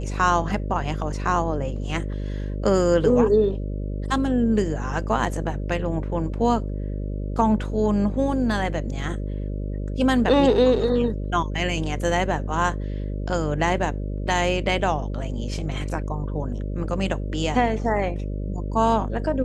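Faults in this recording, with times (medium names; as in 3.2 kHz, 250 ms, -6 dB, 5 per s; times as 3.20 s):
buzz 50 Hz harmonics 12 -28 dBFS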